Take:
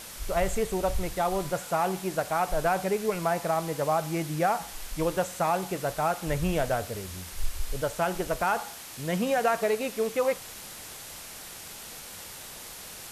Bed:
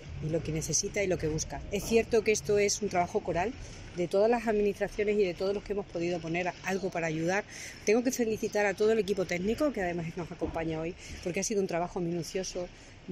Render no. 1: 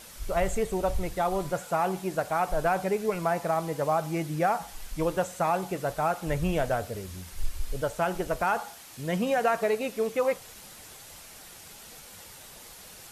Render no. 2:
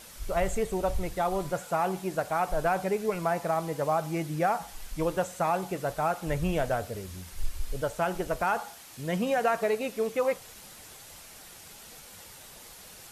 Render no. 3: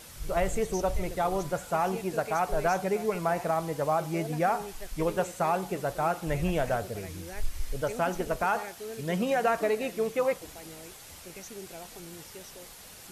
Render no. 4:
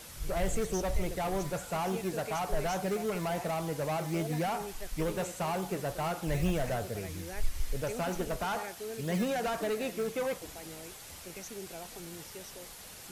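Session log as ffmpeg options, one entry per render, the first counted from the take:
-af "afftdn=nr=6:nf=-43"
-af "volume=-1dB"
-filter_complex "[1:a]volume=-14dB[a];[0:a][a]amix=inputs=2:normalize=0"
-filter_complex "[0:a]acrossover=split=250|3700[a][b][c];[a]acrusher=samples=18:mix=1:aa=0.000001:lfo=1:lforange=10.8:lforate=3.5[d];[b]asoftclip=type=tanh:threshold=-30dB[e];[d][e][c]amix=inputs=3:normalize=0"

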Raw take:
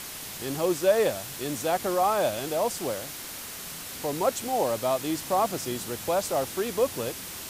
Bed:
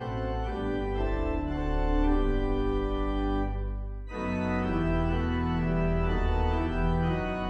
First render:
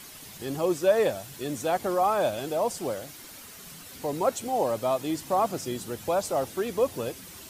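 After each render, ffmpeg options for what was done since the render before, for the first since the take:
-af "afftdn=nr=9:nf=-39"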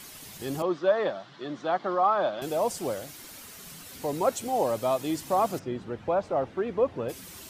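-filter_complex "[0:a]asettb=1/sr,asplit=3[a][b][c];[a]atrim=end=0.624[d];[b]atrim=start=0.62:end=2.42,asetpts=PTS-STARTPTS,afade=t=in:d=0.004:c=qsin,afade=t=out:st=1.796:d=0.004:c=qsin,highpass=f=170:w=0.5412,highpass=f=170:w=1.3066,equalizer=f=240:t=q:w=4:g=-7,equalizer=f=460:t=q:w=4:g=-7,equalizer=f=1.2k:t=q:w=4:g=6,equalizer=f=2.5k:t=q:w=4:g=-9,lowpass=f=3.9k:w=0.5412,lowpass=f=3.9k:w=1.3066[e];[c]atrim=start=2.416[f];[d][e]acrossfade=d=0.004:c1=hsin:c2=qsin[g];[g][f]acrossfade=d=0.004:c1=qsin:c2=hsin,asplit=3[h][i][j];[h]afade=t=out:st=5.58:d=0.02[k];[i]lowpass=2k,afade=t=in:st=5.58:d=0.02,afade=t=out:st=7.08:d=0.02[l];[j]afade=t=in:st=7.08:d=0.02[m];[k][l][m]amix=inputs=3:normalize=0"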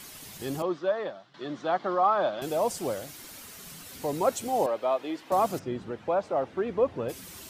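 -filter_complex "[0:a]asettb=1/sr,asplit=3[a][b][c];[a]atrim=end=4.664[d];[b]atrim=start=4.66:end=5.32,asetpts=PTS-STARTPTS,afade=t=in:d=0.004:c=qsin,afade=t=out:st=0.656:d=0.004:c=qsin,acrossover=split=290 3800:gain=0.0794 1 0.0794[e][f][g];[e][f][g]amix=inputs=3:normalize=0[h];[c]atrim=start=5.316[i];[d][h]acrossfade=d=0.004:c1=hsin:c2=qsin[j];[j][i]acrossfade=d=0.004:c1=qsin:c2=hsin,asettb=1/sr,asplit=3[k][l][m];[k]atrim=end=5.914[n];[l]atrim=start=5.91:end=6.53,asetpts=PTS-STARTPTS,afade=t=in:d=0.004:c=qsin,afade=t=out:st=0.616:d=0.004:c=qsin,highpass=f=200:p=1[o];[m]atrim=start=6.526[p];[n][o]acrossfade=d=0.004:c1=hsin:c2=qsin[q];[q][p]acrossfade=d=0.004:c1=qsin:c2=hsin,asplit=2[r][s];[r]atrim=end=1.34,asetpts=PTS-STARTPTS,afade=t=out:st=0.46:d=0.88:silence=0.251189[t];[s]atrim=start=1.34,asetpts=PTS-STARTPTS,afade=t=in:d=0.004:c=hsin:silence=0.251189[u];[t][u]concat=n=2:v=0:a=1"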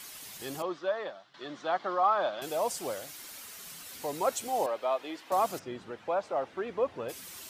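-af "lowshelf=f=420:g=-11.5"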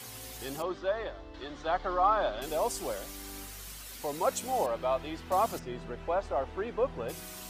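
-filter_complex "[1:a]volume=-18.5dB[a];[0:a][a]amix=inputs=2:normalize=0"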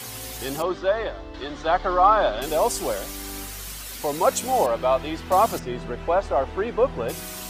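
-af "volume=9dB"

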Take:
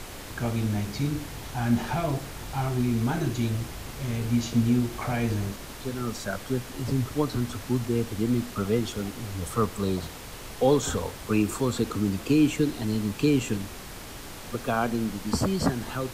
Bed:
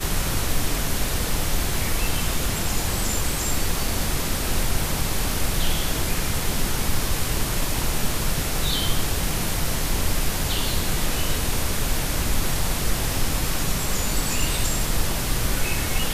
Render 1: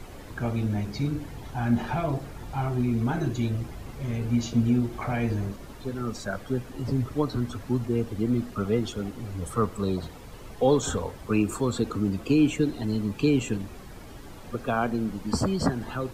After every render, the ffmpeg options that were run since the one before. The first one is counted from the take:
-af "afftdn=nr=11:nf=-41"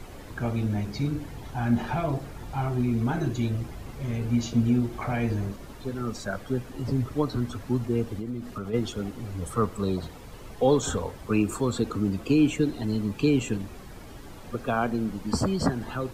-filter_complex "[0:a]asplit=3[a][b][c];[a]afade=t=out:st=8.18:d=0.02[d];[b]acompressor=threshold=-30dB:ratio=4:attack=3.2:release=140:knee=1:detection=peak,afade=t=in:st=8.18:d=0.02,afade=t=out:st=8.73:d=0.02[e];[c]afade=t=in:st=8.73:d=0.02[f];[d][e][f]amix=inputs=3:normalize=0"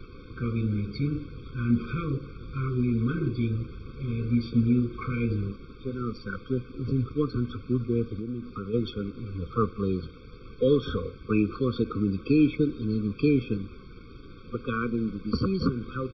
-af "aresample=11025,aeval=exprs='sgn(val(0))*max(abs(val(0))-0.00178,0)':c=same,aresample=44100,afftfilt=real='re*eq(mod(floor(b*sr/1024/530),2),0)':imag='im*eq(mod(floor(b*sr/1024/530),2),0)':win_size=1024:overlap=0.75"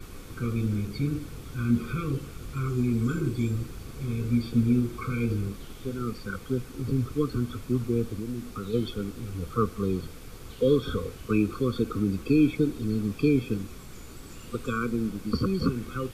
-filter_complex "[1:a]volume=-24dB[a];[0:a][a]amix=inputs=2:normalize=0"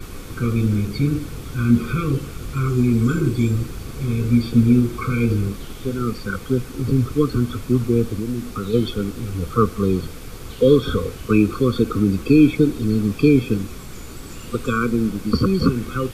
-af "volume=8.5dB"

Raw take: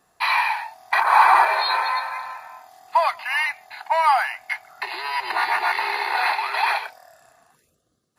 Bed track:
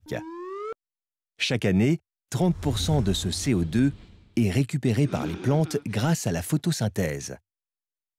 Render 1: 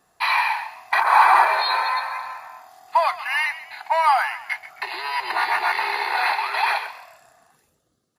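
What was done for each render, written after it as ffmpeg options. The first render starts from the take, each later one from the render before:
-filter_complex "[0:a]asplit=4[a][b][c][d];[b]adelay=132,afreqshift=60,volume=-15dB[e];[c]adelay=264,afreqshift=120,volume=-23.6dB[f];[d]adelay=396,afreqshift=180,volume=-32.3dB[g];[a][e][f][g]amix=inputs=4:normalize=0"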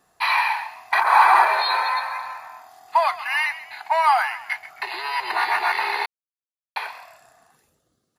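-filter_complex "[0:a]asplit=3[a][b][c];[a]atrim=end=6.06,asetpts=PTS-STARTPTS,afade=t=out:st=6.056:d=0.004:c=hsin[d];[b]atrim=start=6.06:end=6.76,asetpts=PTS-STARTPTS,volume=0[e];[c]atrim=start=6.76,asetpts=PTS-STARTPTS,afade=t=in:d=0.004:c=hsin[f];[d][e][f]concat=n=3:v=0:a=1"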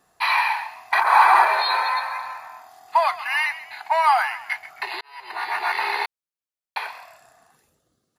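-filter_complex "[0:a]asplit=2[a][b];[a]atrim=end=5.01,asetpts=PTS-STARTPTS,afade=t=out:st=5.006:d=0.004:c=hsin[c];[b]atrim=start=5.01,asetpts=PTS-STARTPTS,afade=t=in:d=0.86[d];[c][d]concat=n=2:v=0:a=1"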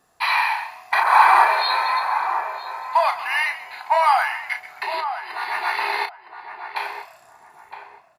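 -filter_complex "[0:a]asplit=2[a][b];[b]adelay=34,volume=-8dB[c];[a][c]amix=inputs=2:normalize=0,asplit=2[d][e];[e]adelay=963,lowpass=f=1.3k:p=1,volume=-8dB,asplit=2[f][g];[g]adelay=963,lowpass=f=1.3k:p=1,volume=0.3,asplit=2[h][i];[i]adelay=963,lowpass=f=1.3k:p=1,volume=0.3,asplit=2[j][k];[k]adelay=963,lowpass=f=1.3k:p=1,volume=0.3[l];[f][h][j][l]amix=inputs=4:normalize=0[m];[d][m]amix=inputs=2:normalize=0"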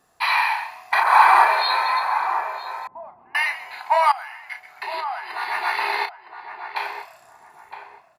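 -filter_complex "[0:a]asettb=1/sr,asplit=3[a][b][c];[a]atrim=end=2.874[d];[b]atrim=start=2.87:end=3.35,asetpts=PTS-STARTPTS,afade=t=in:d=0.004:c=qsin,afade=t=out:st=0.476:d=0.004:c=qsin,lowpass=f=250:t=q:w=2.4[e];[c]atrim=start=3.346[f];[d][e]acrossfade=d=0.004:c1=hsin:c2=qsin[g];[g][f]acrossfade=d=0.004:c1=qsin:c2=hsin,asettb=1/sr,asplit=3[h][i][j];[h]atrim=end=5.954[k];[i]atrim=start=5.95:end=6.99,asetpts=PTS-STARTPTS,afade=t=in:d=0.004:c=qsin,afade=t=out:st=1.036:d=0.004:c=qsin,equalizer=f=11k:t=o:w=0.22:g=-7.5[l];[j]atrim=start=6.986[m];[k][l]acrossfade=d=0.004:c1=hsin:c2=qsin[n];[n][m]acrossfade=d=0.004:c1=qsin:c2=hsin,asplit=2[o][p];[o]atrim=end=4.12,asetpts=PTS-STARTPTS,afade=t=out:st=4.116:d=0.004:c=hsin:silence=0.125893[q];[p]atrim=start=4.12,asetpts=PTS-STARTPTS,afade=t=in:d=1.2:silence=0.125893[r];[q][r]concat=n=2:v=0:a=1"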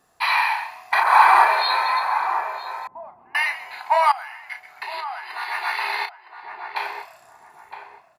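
-filter_complex "[0:a]asettb=1/sr,asplit=3[a][b][c];[a]atrim=end=4.834[d];[b]atrim=start=4.83:end=6.43,asetpts=PTS-STARTPTS,afade=t=in:d=0.004:c=qsin,afade=t=out:st=1.596:d=0.004:c=qsin,highpass=f=870:p=1[e];[c]atrim=start=6.426[f];[d][e]acrossfade=d=0.004:c1=hsin:c2=qsin[g];[g][f]acrossfade=d=0.004:c1=qsin:c2=hsin"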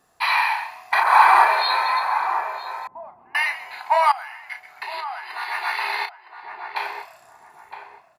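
-af anull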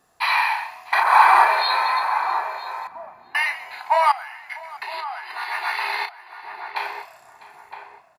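-af "aecho=1:1:651:0.0944"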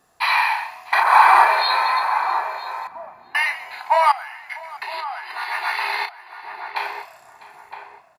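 -af "volume=1.5dB,alimiter=limit=-1dB:level=0:latency=1"

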